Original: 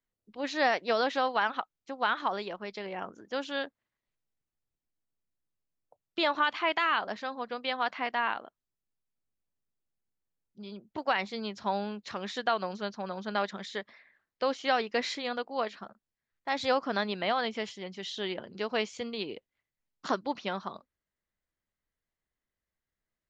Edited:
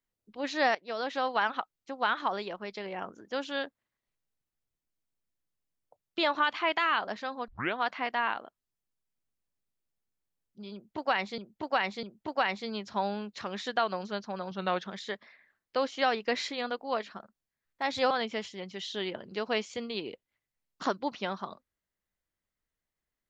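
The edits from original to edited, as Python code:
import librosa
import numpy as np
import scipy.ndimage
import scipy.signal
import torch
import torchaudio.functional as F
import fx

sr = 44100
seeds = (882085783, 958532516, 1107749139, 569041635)

y = fx.edit(x, sr, fx.fade_in_from(start_s=0.75, length_s=0.62, floor_db=-17.0),
    fx.tape_start(start_s=7.48, length_s=0.29),
    fx.repeat(start_s=10.73, length_s=0.65, count=3),
    fx.speed_span(start_s=13.21, length_s=0.32, speed=0.9),
    fx.cut(start_s=16.77, length_s=0.57), tone=tone)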